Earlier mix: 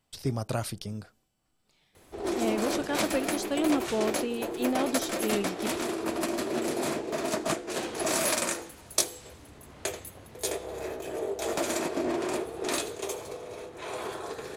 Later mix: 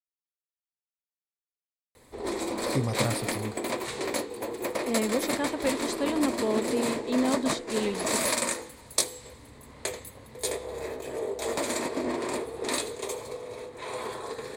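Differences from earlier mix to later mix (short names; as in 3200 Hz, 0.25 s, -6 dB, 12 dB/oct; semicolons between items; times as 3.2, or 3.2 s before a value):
speech: entry +2.50 s; master: add ripple EQ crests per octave 0.98, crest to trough 7 dB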